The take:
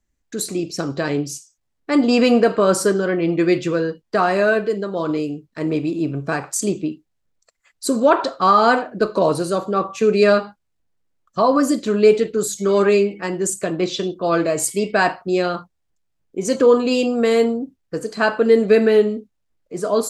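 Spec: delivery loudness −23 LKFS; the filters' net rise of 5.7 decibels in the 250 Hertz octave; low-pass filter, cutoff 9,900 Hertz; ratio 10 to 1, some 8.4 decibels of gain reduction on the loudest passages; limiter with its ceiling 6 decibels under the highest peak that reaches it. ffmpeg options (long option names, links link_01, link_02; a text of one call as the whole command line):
ffmpeg -i in.wav -af "lowpass=9900,equalizer=frequency=250:width_type=o:gain=7,acompressor=threshold=-14dB:ratio=10,volume=-1dB,alimiter=limit=-13dB:level=0:latency=1" out.wav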